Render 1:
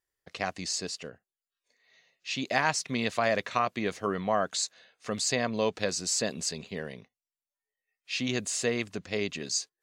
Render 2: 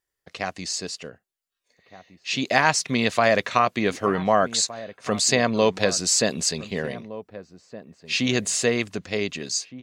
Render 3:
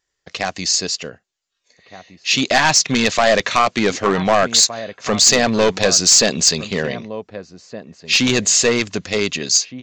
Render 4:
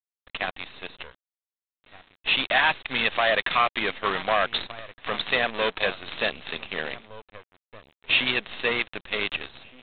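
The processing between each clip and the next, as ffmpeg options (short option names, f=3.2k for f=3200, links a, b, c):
-filter_complex "[0:a]dynaudnorm=f=510:g=7:m=5.5dB,asplit=2[a][b];[b]adelay=1516,volume=-15dB,highshelf=f=4k:g=-34.1[c];[a][c]amix=inputs=2:normalize=0,volume=3dB"
-af "aresample=16000,aeval=exprs='clip(val(0),-1,0.126)':c=same,aresample=44100,highshelf=f=3.1k:g=7,aeval=exprs='0.668*sin(PI/2*1.41*val(0)/0.668)':c=same"
-af "highpass=f=1.3k:p=1,aresample=8000,acrusher=bits=5:dc=4:mix=0:aa=0.000001,aresample=44100,volume=-2.5dB"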